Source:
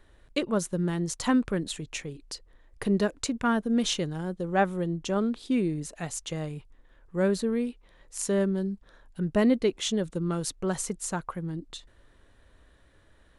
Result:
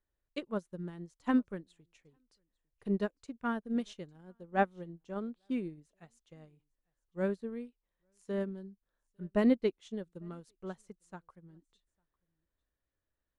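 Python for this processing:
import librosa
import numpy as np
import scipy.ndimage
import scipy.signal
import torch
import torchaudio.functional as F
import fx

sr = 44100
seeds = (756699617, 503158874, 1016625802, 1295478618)

p1 = fx.high_shelf(x, sr, hz=4600.0, db=-7.0)
p2 = p1 + fx.echo_single(p1, sr, ms=852, db=-23.5, dry=0)
p3 = fx.upward_expand(p2, sr, threshold_db=-37.0, expansion=2.5)
y = p3 * librosa.db_to_amplitude(-2.5)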